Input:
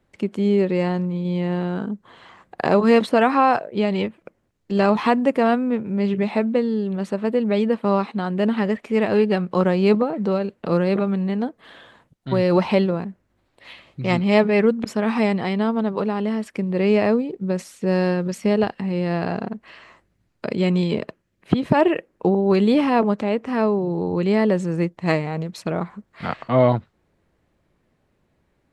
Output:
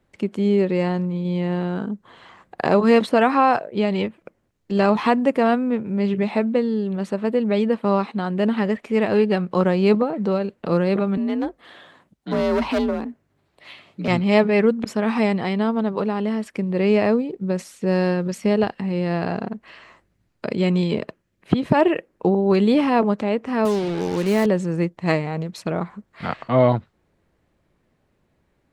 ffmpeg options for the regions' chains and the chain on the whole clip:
-filter_complex "[0:a]asettb=1/sr,asplit=3[a][b][c];[a]atrim=end=11.174[d];[b]atrim=start=11.17:end=14.08,asetpts=PTS-STARTPTS,afade=t=in:d=0.004:c=qsin,afade=t=out:st=2.906:d=0.004:c=qsin,asoftclip=type=hard:threshold=-17.5dB,afreqshift=48[e];[c]atrim=start=14.076[f];[d][e]acrossfade=d=0.004:c1=hsin:c2=qsin[g];[g][f]acrossfade=d=0.004:c1=qsin:c2=hsin,asettb=1/sr,asplit=3[h][i][j];[h]atrim=end=23.654[k];[i]atrim=start=23.65:end=24.46,asetpts=PTS-STARTPTS,afade=t=in:d=0.004:c=qsin,afade=t=out:st=0.806:d=0.004:c=qsin,highpass=59,equalizer=f=130:t=o:w=0.41:g=-10,acrusher=bits=4:mix=0:aa=0.5[l];[j]atrim=start=24.456[m];[k][l]acrossfade=d=0.004:c1=hsin:c2=qsin[n];[n][m]acrossfade=d=0.004:c1=qsin:c2=hsin"

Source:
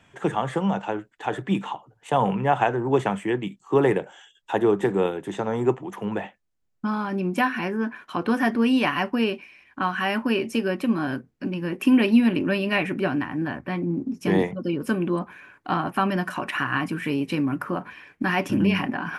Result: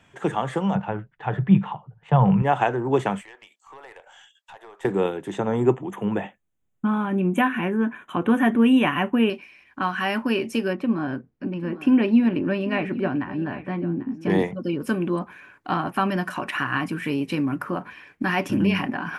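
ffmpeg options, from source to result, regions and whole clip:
-filter_complex "[0:a]asettb=1/sr,asplit=3[a][b][c];[a]atrim=end=0.754[d];[b]atrim=start=0.75:end=2.42,asetpts=PTS-STARTPTS,afade=t=in:d=0.004:c=qsin,afade=t=out:st=1.666:d=0.004:c=qsin,lowpass=2.3k,lowshelf=f=210:t=q:w=3:g=8.5[e];[c]atrim=start=2.416[f];[d][e]acrossfade=d=0.004:c1=hsin:c2=qsin[g];[g][f]acrossfade=d=0.004:c1=qsin:c2=hsin,asettb=1/sr,asplit=3[h][i][j];[h]atrim=end=3.214[k];[i]atrim=start=3.21:end=4.85,asetpts=PTS-STARTPTS,afade=t=in:d=0.004:c=qsin,afade=t=out:st=1.636:d=0.004:c=qsin,highpass=f=620:w=0.5412,highpass=f=620:w=1.3066,acompressor=threshold=-43dB:ratio=3:attack=3.2:release=140:knee=1:detection=peak,aeval=exprs='(tanh(50.1*val(0)+0.35)-tanh(0.35))/50.1':c=same[l];[j]atrim=start=4.846[m];[k][l]acrossfade=d=0.004:c1=hsin:c2=qsin[n];[n][m]acrossfade=d=0.004:c1=qsin:c2=hsin,asettb=1/sr,asplit=3[o][p][q];[o]atrim=end=5.384[r];[p]atrim=start=5.38:end=9.3,asetpts=PTS-STARTPTS,afade=t=in:d=0.004:c=qsin,afade=t=out:st=3.916:d=0.004:c=qsin,asuperstop=centerf=4800:order=12:qfactor=2.1,equalizer=f=160:w=0.48:g=4.5[s];[q]atrim=start=9.296[t];[r][s]acrossfade=d=0.004:c1=hsin:c2=qsin[u];[u][t]acrossfade=d=0.004:c1=qsin:c2=hsin,asettb=1/sr,asplit=3[v][w][x];[v]atrim=end=10.734[y];[w]atrim=start=10.73:end=14.3,asetpts=PTS-STARTPTS,afade=t=in:d=0.004:c=qsin,afade=t=out:st=3.566:d=0.004:c=qsin,lowpass=f=1.5k:p=1,aecho=1:1:793:0.168,atrim=end_sample=157437[z];[x]atrim=start=14.296[aa];[y][z]acrossfade=d=0.004:c1=hsin:c2=qsin[ab];[ab][aa]acrossfade=d=0.004:c1=qsin:c2=hsin"

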